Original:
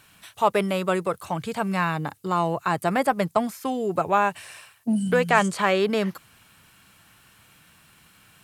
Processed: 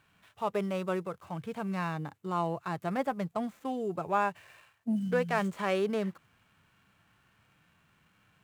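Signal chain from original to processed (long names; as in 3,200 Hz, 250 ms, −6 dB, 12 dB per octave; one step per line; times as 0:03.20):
running median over 9 samples
harmonic and percussive parts rebalanced percussive −6 dB
level −7 dB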